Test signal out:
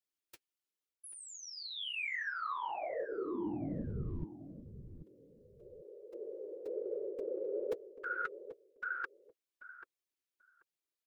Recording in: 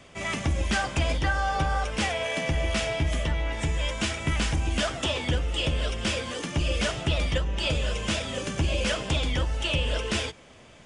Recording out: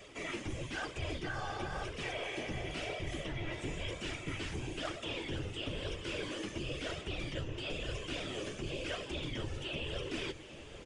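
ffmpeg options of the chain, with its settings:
ffmpeg -i in.wav -filter_complex "[0:a]bandreject=frequency=490:width=12,afftfilt=real='hypot(re,im)*cos(2*PI*random(0))':imag='hypot(re,im)*sin(2*PI*random(1))':win_size=512:overlap=0.75,firequalizer=gain_entry='entry(220,0);entry(320,11);entry(710,0);entry(2700,6);entry(8000,4)':delay=0.05:min_phase=1,areverse,acompressor=threshold=-36dB:ratio=8,areverse,flanger=delay=1.6:depth=8.2:regen=-35:speed=1:shape=sinusoidal,acrossover=split=3300[link_01][link_02];[link_02]acompressor=threshold=-53dB:ratio=4:attack=1:release=60[link_03];[link_01][link_03]amix=inputs=2:normalize=0,asplit=2[link_04][link_05];[link_05]adelay=786,lowpass=frequency=1700:poles=1,volume=-11.5dB,asplit=2[link_06][link_07];[link_07]adelay=786,lowpass=frequency=1700:poles=1,volume=0.19[link_08];[link_06][link_08]amix=inputs=2:normalize=0[link_09];[link_04][link_09]amix=inputs=2:normalize=0,volume=4dB" out.wav

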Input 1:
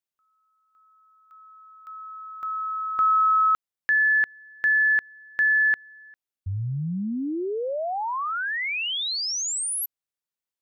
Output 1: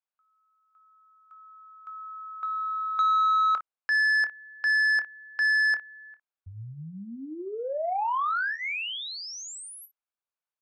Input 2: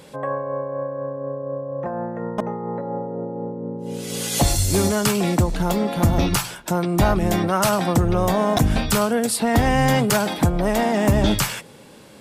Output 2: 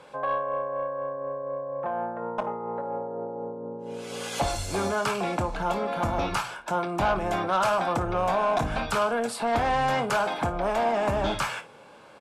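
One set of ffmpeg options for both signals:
ffmpeg -i in.wav -filter_complex "[0:a]acrossover=split=590 2200:gain=0.178 1 0.2[link_01][link_02][link_03];[link_01][link_02][link_03]amix=inputs=3:normalize=0,asplit=2[link_04][link_05];[link_05]aecho=0:1:26|56:0.266|0.158[link_06];[link_04][link_06]amix=inputs=2:normalize=0,asoftclip=type=tanh:threshold=-20dB,lowpass=9000,bandreject=frequency=1900:width=6.4,volume=2.5dB" out.wav

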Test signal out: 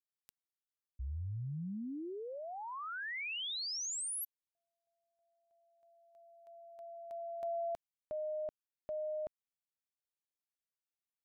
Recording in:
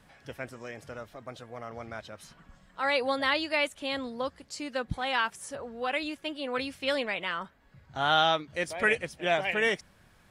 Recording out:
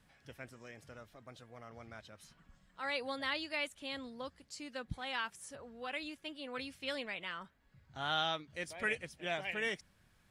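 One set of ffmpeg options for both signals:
ffmpeg -i in.wav -af "equalizer=frequency=670:width=0.52:gain=-5,volume=-7.5dB" out.wav

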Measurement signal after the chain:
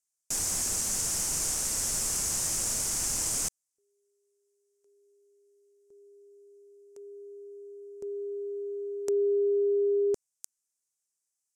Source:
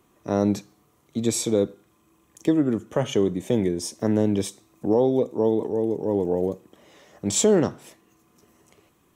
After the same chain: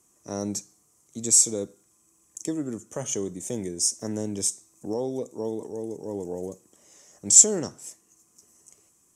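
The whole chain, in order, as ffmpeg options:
ffmpeg -i in.wav -af "aexciter=amount=10.2:drive=3.4:freq=5500,lowpass=frequency=7400:width_type=q:width=1.5,volume=-9.5dB" out.wav

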